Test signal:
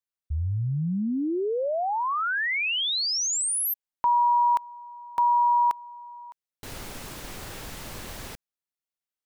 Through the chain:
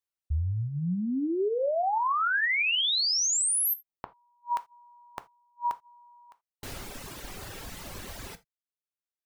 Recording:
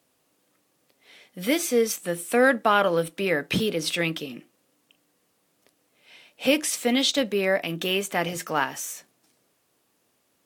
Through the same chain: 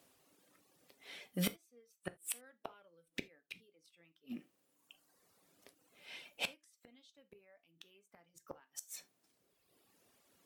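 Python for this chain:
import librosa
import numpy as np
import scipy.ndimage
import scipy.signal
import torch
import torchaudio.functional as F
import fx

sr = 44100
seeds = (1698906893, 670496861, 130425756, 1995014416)

y = fx.dereverb_blind(x, sr, rt60_s=1.2)
y = fx.gate_flip(y, sr, shuts_db=-22.0, range_db=-42)
y = fx.rev_gated(y, sr, seeds[0], gate_ms=100, shape='falling', drr_db=11.0)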